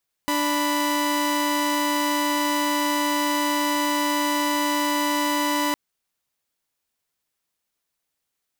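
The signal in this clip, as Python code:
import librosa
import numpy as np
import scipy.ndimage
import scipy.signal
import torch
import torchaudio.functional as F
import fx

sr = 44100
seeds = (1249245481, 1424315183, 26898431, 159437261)

y = fx.chord(sr, length_s=5.46, notes=(62, 83), wave='saw', level_db=-21.0)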